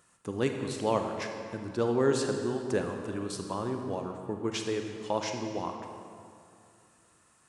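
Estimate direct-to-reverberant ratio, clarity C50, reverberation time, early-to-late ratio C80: 4.0 dB, 4.5 dB, 2.4 s, 6.0 dB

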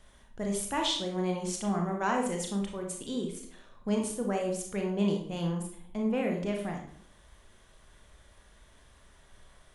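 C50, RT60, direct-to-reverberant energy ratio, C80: 5.0 dB, 0.60 s, 1.5 dB, 9.5 dB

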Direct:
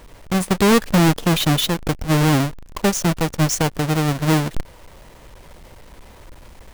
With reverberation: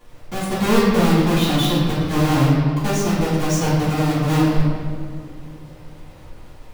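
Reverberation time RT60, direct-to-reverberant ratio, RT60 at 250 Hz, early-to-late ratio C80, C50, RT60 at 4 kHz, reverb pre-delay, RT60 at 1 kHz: 2.1 s, −13.5 dB, 3.2 s, 1.0 dB, −1.0 dB, 1.3 s, 3 ms, 1.8 s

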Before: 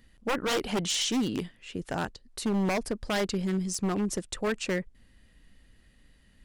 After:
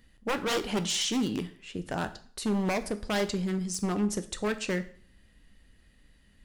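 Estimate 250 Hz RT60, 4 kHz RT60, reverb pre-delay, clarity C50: 0.50 s, 0.50 s, 5 ms, 15.5 dB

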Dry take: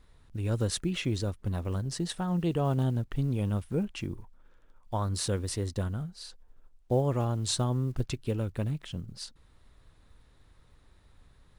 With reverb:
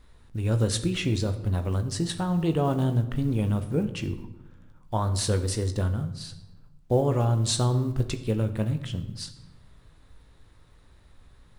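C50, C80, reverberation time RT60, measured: 12.0 dB, 14.0 dB, 1.0 s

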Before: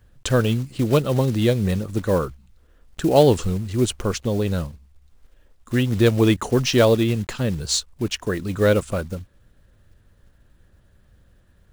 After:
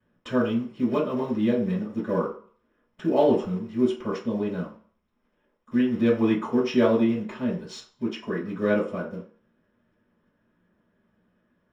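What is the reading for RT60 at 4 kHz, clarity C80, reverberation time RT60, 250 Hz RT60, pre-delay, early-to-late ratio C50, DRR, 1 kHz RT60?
0.45 s, 11.5 dB, 0.45 s, 0.40 s, 3 ms, 6.5 dB, −14.5 dB, 0.50 s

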